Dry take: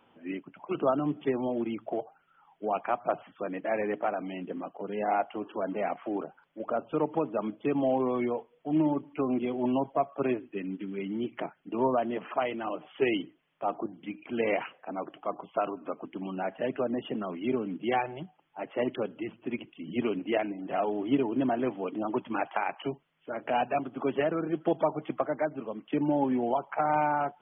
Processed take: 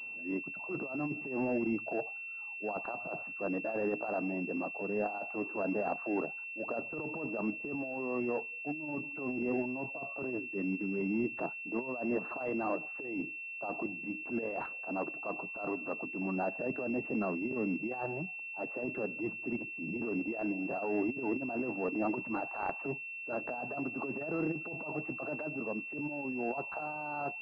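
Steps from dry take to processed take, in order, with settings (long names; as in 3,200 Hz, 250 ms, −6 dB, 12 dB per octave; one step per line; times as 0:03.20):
compressor whose output falls as the input rises −31 dBFS, ratio −0.5
transient designer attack −7 dB, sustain −1 dB
switching amplifier with a slow clock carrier 2,700 Hz
level −1 dB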